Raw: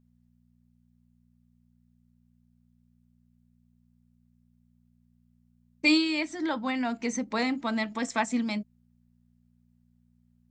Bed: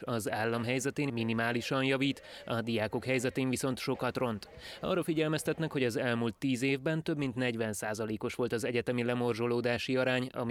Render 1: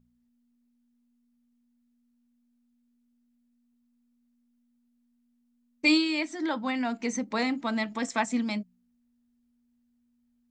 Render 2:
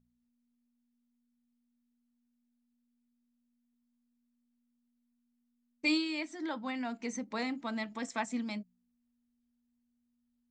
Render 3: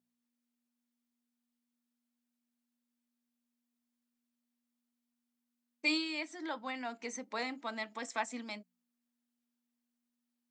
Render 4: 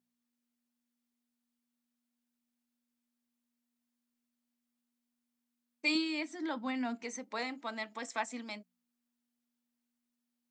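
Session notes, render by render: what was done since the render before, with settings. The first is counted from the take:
de-hum 60 Hz, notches 3
trim -7.5 dB
high-pass 380 Hz 12 dB/octave
5.95–7.03 s: peaking EQ 240 Hz +10.5 dB

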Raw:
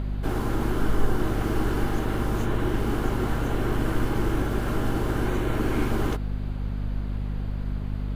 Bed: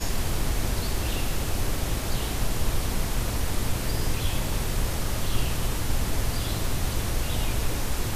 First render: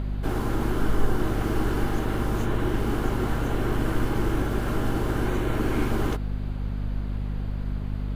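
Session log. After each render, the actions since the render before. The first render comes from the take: no audible change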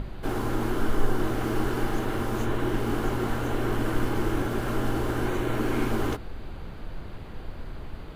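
hum notches 50/100/150/200/250/300 Hz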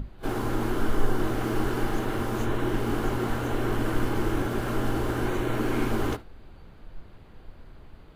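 noise print and reduce 10 dB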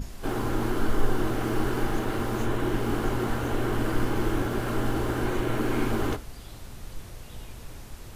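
add bed -16.5 dB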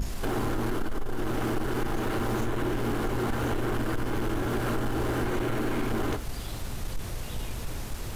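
compression, threshold -29 dBFS, peak gain reduction 14.5 dB; waveshaping leveller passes 2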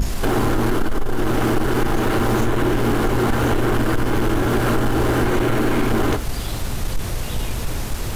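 trim +10 dB

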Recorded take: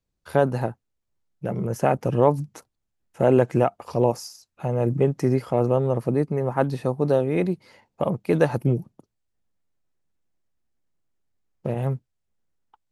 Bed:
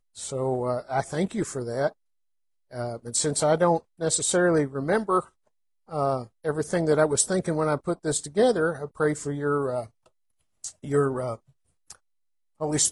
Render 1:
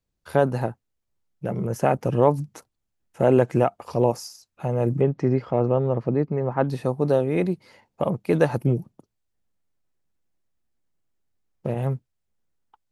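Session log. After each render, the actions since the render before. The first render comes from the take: 5.01–6.68 s: distance through air 190 m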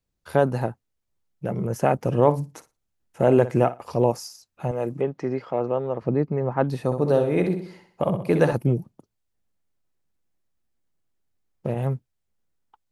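1.97–3.86 s: flutter echo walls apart 9.8 m, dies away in 0.23 s; 4.71–6.02 s: high-pass 430 Hz 6 dB/octave; 6.85–8.53 s: flutter echo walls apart 10.9 m, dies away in 0.54 s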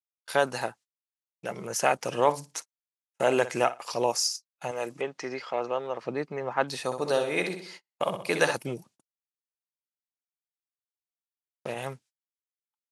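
gate -43 dBFS, range -40 dB; frequency weighting ITU-R 468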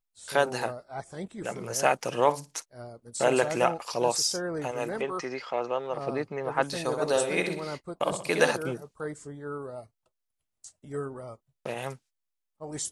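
add bed -11.5 dB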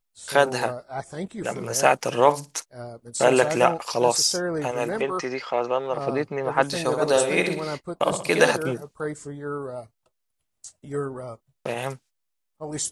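trim +5.5 dB; peak limiter -2 dBFS, peak gain reduction 1 dB

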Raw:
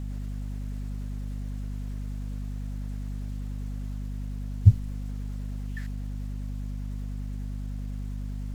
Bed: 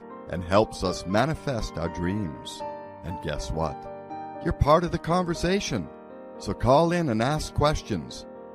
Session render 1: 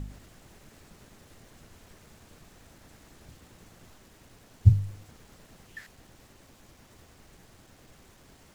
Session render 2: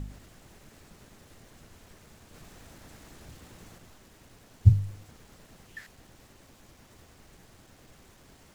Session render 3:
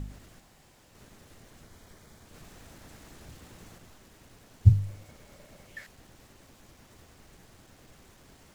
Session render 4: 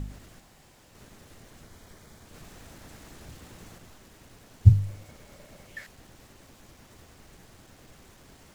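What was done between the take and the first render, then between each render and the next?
de-hum 50 Hz, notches 10
2.34–3.78 s: waveshaping leveller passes 1
0.40–0.95 s: room tone; 1.64–2.26 s: band-stop 2.7 kHz, Q 6.7; 4.81–5.83 s: small resonant body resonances 580/2200 Hz, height 9 dB -> 12 dB
trim +2.5 dB

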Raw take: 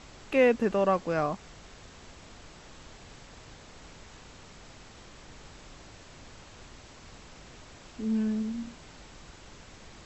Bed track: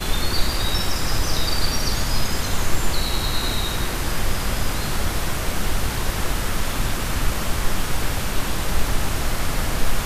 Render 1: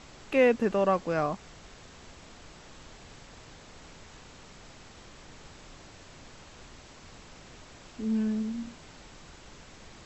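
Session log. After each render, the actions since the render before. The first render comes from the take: de-hum 50 Hz, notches 2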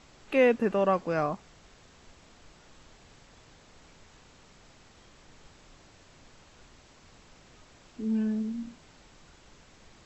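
noise print and reduce 6 dB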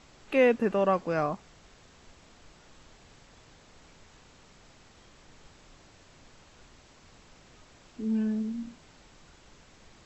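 no audible change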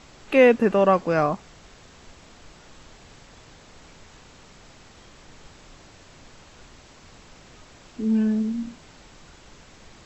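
trim +7 dB

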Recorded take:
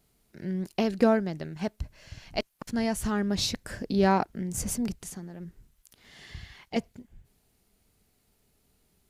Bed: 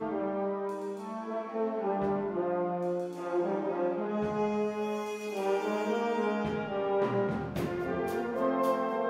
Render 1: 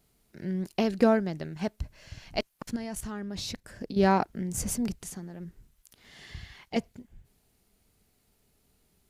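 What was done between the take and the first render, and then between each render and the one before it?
2.76–3.99 s: level held to a coarse grid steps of 12 dB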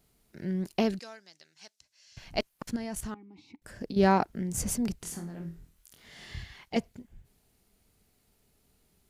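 0.99–2.17 s: band-pass filter 5.7 kHz, Q 1.7; 3.14–3.62 s: vowel filter u; 4.99–6.43 s: flutter echo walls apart 4.1 m, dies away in 0.29 s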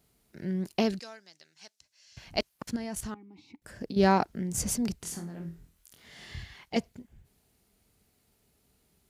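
high-pass 41 Hz; dynamic bell 4.9 kHz, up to +4 dB, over -48 dBFS, Q 1.1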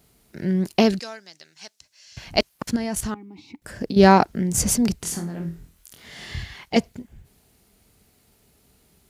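trim +9.5 dB

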